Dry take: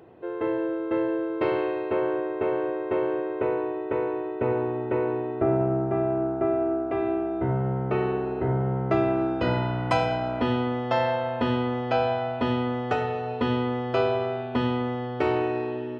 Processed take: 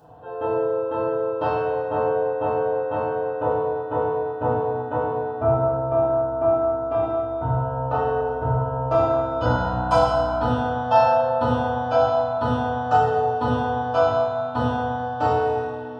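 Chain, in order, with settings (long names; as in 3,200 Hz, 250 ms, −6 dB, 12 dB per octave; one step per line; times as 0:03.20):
phaser with its sweep stopped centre 880 Hz, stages 4
bucket-brigade delay 86 ms, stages 1,024, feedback 78%, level −15 dB
feedback delay network reverb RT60 1.4 s, low-frequency decay 0.8×, high-frequency decay 0.65×, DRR −9 dB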